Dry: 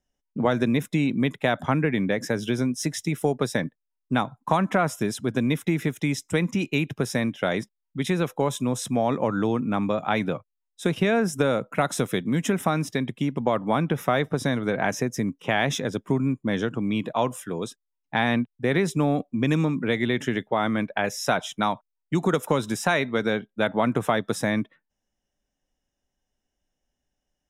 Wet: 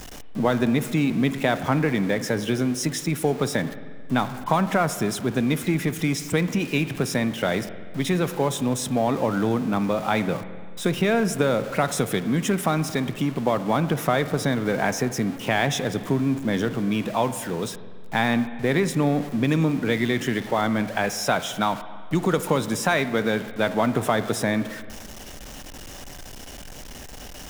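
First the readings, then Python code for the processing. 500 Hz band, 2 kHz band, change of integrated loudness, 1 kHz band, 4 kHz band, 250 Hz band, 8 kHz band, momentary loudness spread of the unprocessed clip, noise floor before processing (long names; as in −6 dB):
+1.0 dB, +1.0 dB, +1.5 dB, +1.5 dB, +2.5 dB, +1.5 dB, +4.0 dB, 5 LU, −81 dBFS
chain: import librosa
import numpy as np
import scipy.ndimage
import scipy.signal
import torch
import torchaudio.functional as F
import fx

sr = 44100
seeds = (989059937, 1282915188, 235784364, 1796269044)

y = x + 0.5 * 10.0 ** (-32.5 / 20.0) * np.sign(x)
y = fx.rev_spring(y, sr, rt60_s=1.8, pass_ms=(44, 55), chirp_ms=80, drr_db=12.0)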